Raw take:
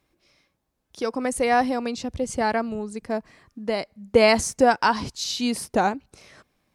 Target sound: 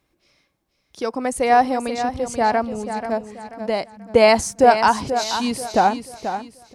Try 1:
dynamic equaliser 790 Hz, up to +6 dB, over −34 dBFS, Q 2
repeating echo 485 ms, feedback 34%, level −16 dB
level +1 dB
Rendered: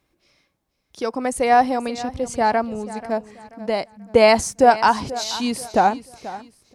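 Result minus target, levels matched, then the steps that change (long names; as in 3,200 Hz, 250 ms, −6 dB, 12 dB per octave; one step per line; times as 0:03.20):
echo-to-direct −6.5 dB
change: repeating echo 485 ms, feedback 34%, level −9.5 dB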